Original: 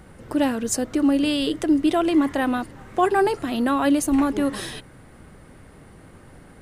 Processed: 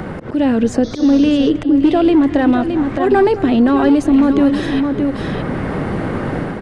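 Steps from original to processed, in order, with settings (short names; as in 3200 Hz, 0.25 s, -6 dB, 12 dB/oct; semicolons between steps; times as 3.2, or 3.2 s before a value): dynamic EQ 1100 Hz, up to -6 dB, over -38 dBFS, Q 1.1; in parallel at -2 dB: limiter -17 dBFS, peak gain reduction 6.5 dB; on the sum: auto swell 0.182 s; AGC gain up to 14 dB; outdoor echo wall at 37 m, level -19 dB; overloaded stage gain 5 dB; on a send: echo 0.617 s -10.5 dB; on the sum: painted sound noise, 0.83–1.5, 3300–6600 Hz -27 dBFS; tape spacing loss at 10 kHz 25 dB; three-band squash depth 70%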